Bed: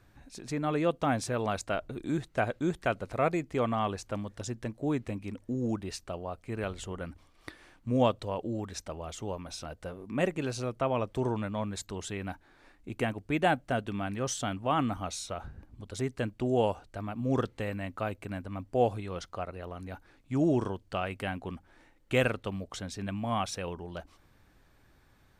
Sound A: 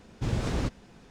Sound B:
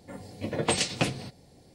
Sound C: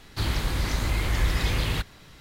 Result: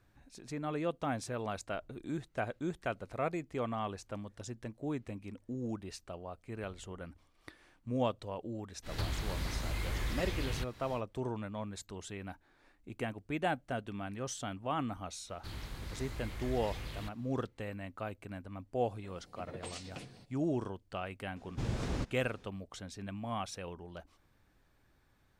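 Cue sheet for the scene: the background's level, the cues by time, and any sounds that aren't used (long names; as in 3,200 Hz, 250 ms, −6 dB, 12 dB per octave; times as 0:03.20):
bed −7 dB
0:08.82: mix in C −11.5 dB, fades 0.10 s + multiband upward and downward compressor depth 100%
0:15.27: mix in C −17.5 dB
0:18.95: mix in B −16.5 dB + brickwall limiter −16.5 dBFS
0:21.36: mix in A −6.5 dB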